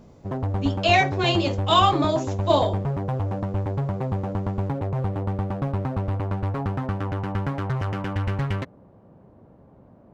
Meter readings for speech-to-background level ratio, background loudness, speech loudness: 5.5 dB, -27.5 LUFS, -22.0 LUFS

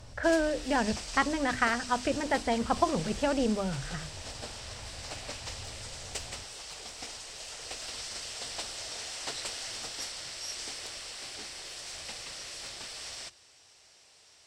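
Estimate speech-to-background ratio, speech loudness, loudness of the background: 9.5 dB, -29.5 LUFS, -39.0 LUFS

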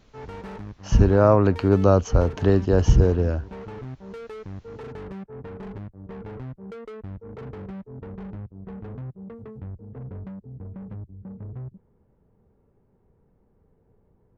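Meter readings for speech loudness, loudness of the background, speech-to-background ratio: -19.5 LUFS, -38.5 LUFS, 19.0 dB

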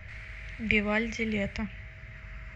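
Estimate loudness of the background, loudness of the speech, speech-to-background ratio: -47.0 LUFS, -29.5 LUFS, 17.5 dB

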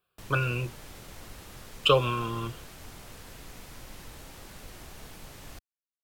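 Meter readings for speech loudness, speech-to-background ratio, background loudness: -27.5 LUFS, 19.0 dB, -46.5 LUFS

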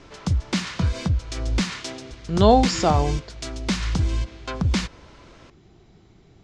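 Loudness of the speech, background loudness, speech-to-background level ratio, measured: -20.5 LUFS, -26.0 LUFS, 5.5 dB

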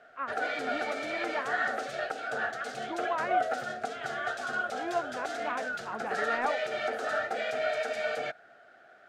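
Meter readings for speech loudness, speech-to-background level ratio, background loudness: -37.5 LUFS, -4.5 dB, -33.0 LUFS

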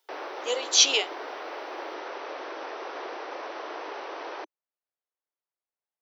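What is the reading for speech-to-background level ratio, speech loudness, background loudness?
16.0 dB, -21.5 LUFS, -37.5 LUFS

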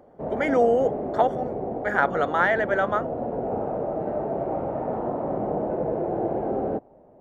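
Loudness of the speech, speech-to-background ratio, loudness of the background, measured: -24.0 LUFS, 5.0 dB, -29.0 LUFS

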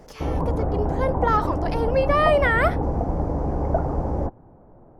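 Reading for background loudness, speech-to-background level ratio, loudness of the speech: -26.0 LUFS, 3.0 dB, -23.0 LUFS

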